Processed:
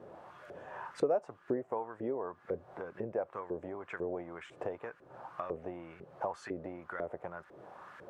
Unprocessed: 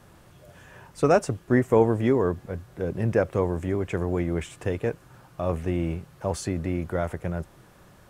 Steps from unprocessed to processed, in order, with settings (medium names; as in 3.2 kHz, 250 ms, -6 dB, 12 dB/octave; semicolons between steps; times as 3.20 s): compression 6:1, threshold -37 dBFS, peak gain reduction 21.5 dB; LFO band-pass saw up 2 Hz 410–1700 Hz; trim +11 dB